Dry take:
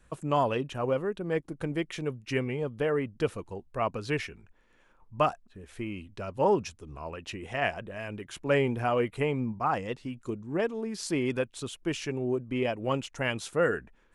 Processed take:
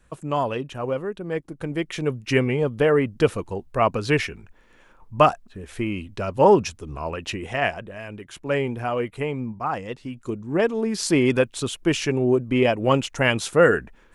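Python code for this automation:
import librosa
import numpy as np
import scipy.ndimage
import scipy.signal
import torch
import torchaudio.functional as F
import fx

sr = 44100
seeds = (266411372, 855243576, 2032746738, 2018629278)

y = fx.gain(x, sr, db=fx.line((1.58, 2.0), (2.18, 9.5), (7.29, 9.5), (8.02, 1.5), (9.85, 1.5), (10.85, 10.0)))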